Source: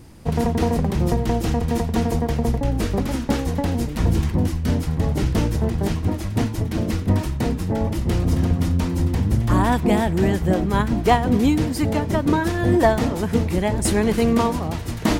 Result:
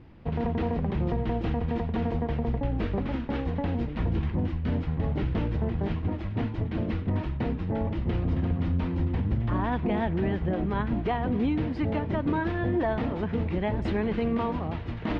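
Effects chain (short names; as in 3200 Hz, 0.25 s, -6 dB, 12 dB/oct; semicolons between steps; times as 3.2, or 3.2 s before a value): LPF 3200 Hz 24 dB/oct; limiter -12.5 dBFS, peak gain reduction 8.5 dB; gain -6 dB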